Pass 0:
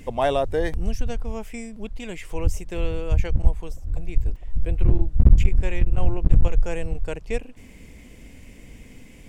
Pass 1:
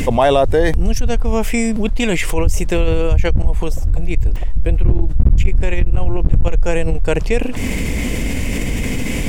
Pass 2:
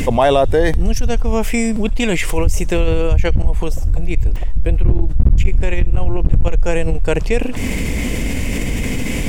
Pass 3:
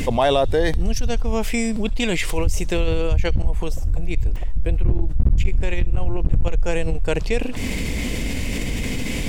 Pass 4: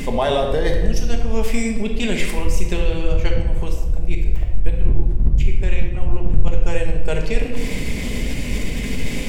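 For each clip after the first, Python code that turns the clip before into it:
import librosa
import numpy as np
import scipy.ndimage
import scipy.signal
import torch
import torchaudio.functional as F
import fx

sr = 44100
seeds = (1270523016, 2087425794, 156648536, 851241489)

y1 = fx.env_flatten(x, sr, amount_pct=70)
y1 = y1 * librosa.db_to_amplitude(-1.0)
y2 = fx.echo_wet_highpass(y1, sr, ms=68, feedback_pct=59, hz=3400.0, wet_db=-21)
y3 = fx.dynamic_eq(y2, sr, hz=4100.0, q=1.8, threshold_db=-44.0, ratio=4.0, max_db=7)
y3 = y3 * librosa.db_to_amplitude(-5.0)
y4 = fx.room_shoebox(y3, sr, seeds[0], volume_m3=740.0, walls='mixed', distance_m=1.3)
y4 = y4 * librosa.db_to_amplitude(-3.0)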